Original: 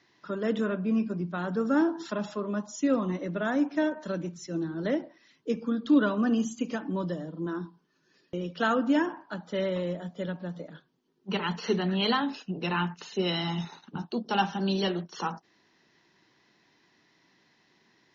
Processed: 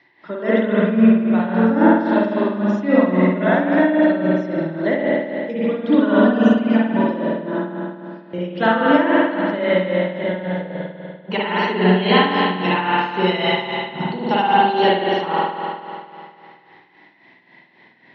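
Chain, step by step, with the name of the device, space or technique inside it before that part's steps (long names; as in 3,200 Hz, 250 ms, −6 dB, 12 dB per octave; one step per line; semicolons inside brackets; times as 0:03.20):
combo amplifier with spring reverb and tremolo (spring reverb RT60 2.5 s, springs 49 ms, chirp 25 ms, DRR −8 dB; amplitude tremolo 3.7 Hz, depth 63%; loudspeaker in its box 94–4,100 Hz, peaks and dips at 620 Hz +5 dB, 880 Hz +6 dB, 1,300 Hz −5 dB, 2,000 Hz +9 dB)
level +5 dB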